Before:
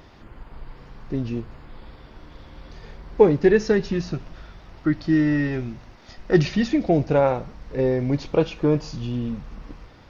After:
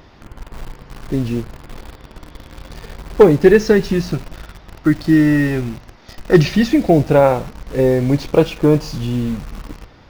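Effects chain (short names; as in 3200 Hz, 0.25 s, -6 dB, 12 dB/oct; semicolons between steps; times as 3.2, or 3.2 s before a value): in parallel at -6 dB: requantised 6-bit, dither none; on the sum: overloaded stage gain 4.5 dB; gain +3.5 dB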